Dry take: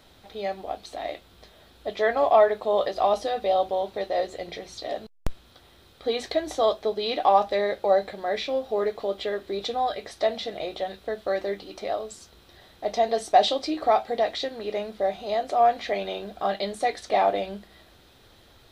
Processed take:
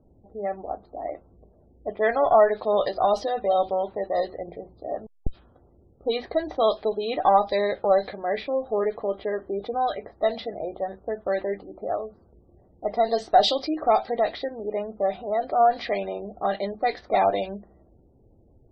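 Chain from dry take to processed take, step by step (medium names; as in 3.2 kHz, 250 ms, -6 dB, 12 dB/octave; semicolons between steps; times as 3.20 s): level-controlled noise filter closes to 380 Hz, open at -17.5 dBFS; in parallel at -7.5 dB: one-sided clip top -27.5 dBFS; on the sum: peaking EQ 4.8 kHz +7 dB 0.3 oct; spectral gate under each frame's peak -30 dB strong; trim -1.5 dB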